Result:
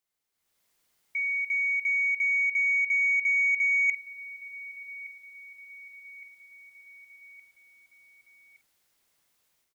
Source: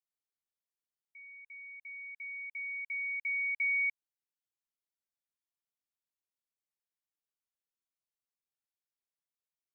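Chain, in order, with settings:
automatic gain control gain up to 14.5 dB
brickwall limiter −16.5 dBFS, peak gain reduction 4 dB
reversed playback
downward compressor 6 to 1, threshold −32 dBFS, peak gain reduction 12.5 dB
reversed playback
double-tracking delay 49 ms −13 dB
hollow resonant body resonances 2,100 Hz, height 7 dB
on a send: repeating echo 1,166 ms, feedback 56%, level −20 dB
on the sum: soft clipping −23 dBFS, distortion −30 dB
level +8 dB

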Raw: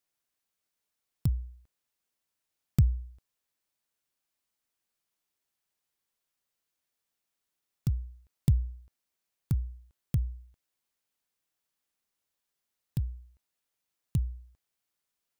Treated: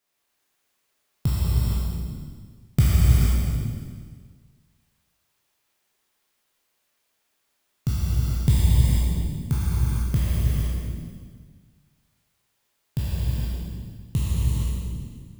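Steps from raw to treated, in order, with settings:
peak hold with a decay on every bin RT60 1.71 s
bass and treble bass −4 dB, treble −4 dB
reverb whose tail is shaped and stops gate 490 ms flat, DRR −4.5 dB
level +6 dB

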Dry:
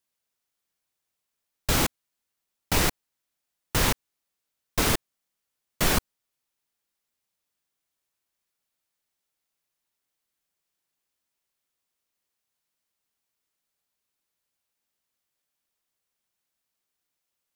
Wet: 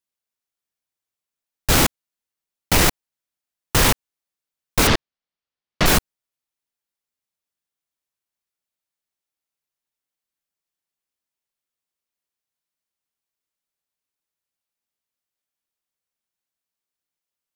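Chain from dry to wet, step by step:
0:04.87–0:05.86: low-pass filter 5,100 Hz 24 dB per octave
leveller curve on the samples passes 3

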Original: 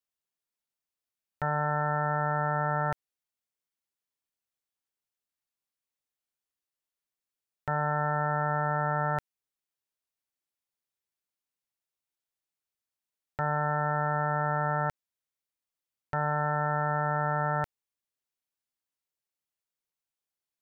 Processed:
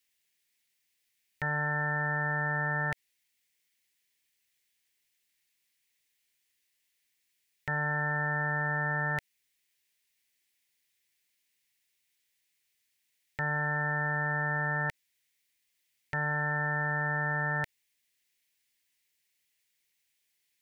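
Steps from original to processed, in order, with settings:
high shelf with overshoot 1,600 Hz +7 dB, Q 3
brickwall limiter −26.5 dBFS, peak gain reduction 10.5 dB
parametric band 670 Hz −8 dB 0.31 octaves
level +6.5 dB

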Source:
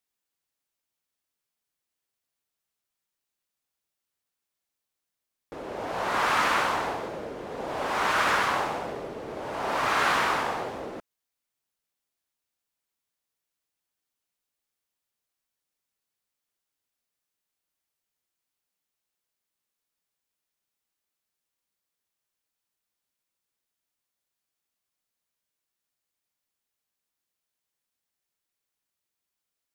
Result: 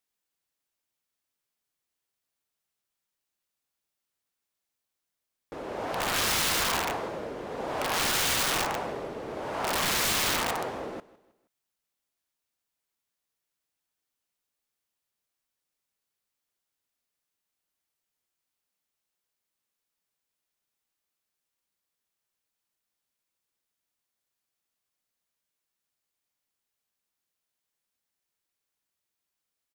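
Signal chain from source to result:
repeating echo 158 ms, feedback 41%, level −20.5 dB
wrap-around overflow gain 21.5 dB

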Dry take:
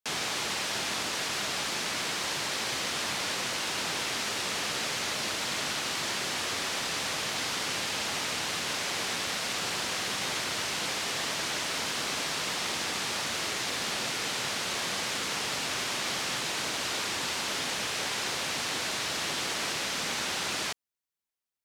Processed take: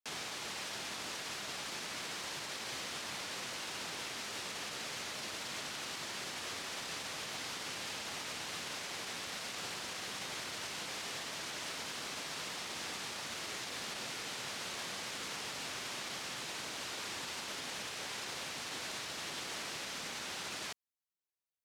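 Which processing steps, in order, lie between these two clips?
brickwall limiter −25 dBFS, peak gain reduction 6.5 dB
level −7.5 dB

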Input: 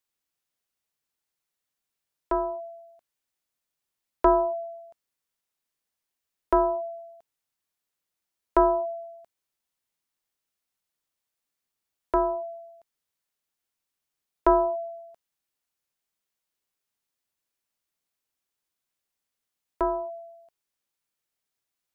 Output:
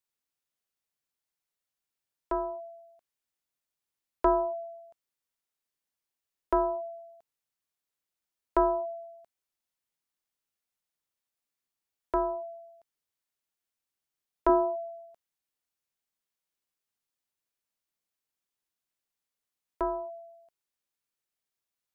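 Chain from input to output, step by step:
0:14.49–0:15.06: low shelf with overshoot 230 Hz −7 dB, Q 3
level −4.5 dB

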